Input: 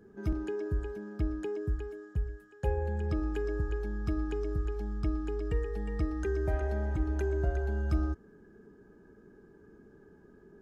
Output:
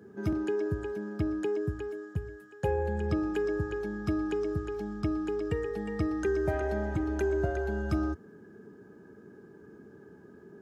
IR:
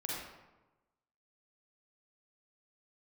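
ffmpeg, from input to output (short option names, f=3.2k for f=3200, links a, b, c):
-af "highpass=f=89:w=0.5412,highpass=f=89:w=1.3066,volume=5dB"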